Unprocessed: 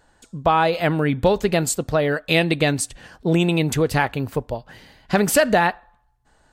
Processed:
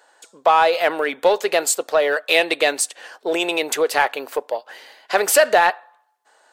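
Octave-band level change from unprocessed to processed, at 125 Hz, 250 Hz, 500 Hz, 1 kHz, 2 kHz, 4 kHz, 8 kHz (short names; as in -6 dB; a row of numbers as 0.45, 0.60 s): under -25 dB, -9.5 dB, +2.5 dB, +3.5 dB, +3.0 dB, +3.5 dB, +4.0 dB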